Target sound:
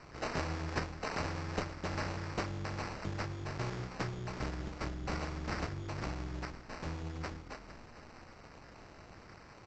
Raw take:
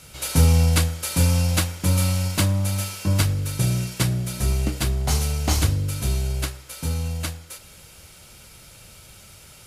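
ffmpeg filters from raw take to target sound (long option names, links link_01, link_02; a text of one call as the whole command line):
ffmpeg -i in.wav -filter_complex "[0:a]acrossover=split=5700[link_01][link_02];[link_01]acompressor=threshold=-31dB:ratio=6[link_03];[link_03][link_02]amix=inputs=2:normalize=0,asplit=6[link_04][link_05][link_06][link_07][link_08][link_09];[link_05]adelay=456,afreqshift=-39,volume=-13.5dB[link_10];[link_06]adelay=912,afreqshift=-78,volume=-19.2dB[link_11];[link_07]adelay=1368,afreqshift=-117,volume=-24.9dB[link_12];[link_08]adelay=1824,afreqshift=-156,volume=-30.5dB[link_13];[link_09]adelay=2280,afreqshift=-195,volume=-36.2dB[link_14];[link_04][link_10][link_11][link_12][link_13][link_14]amix=inputs=6:normalize=0,acrusher=samples=13:mix=1:aa=0.000001,tremolo=f=240:d=0.889,aresample=16000,aresample=44100,volume=-4dB" out.wav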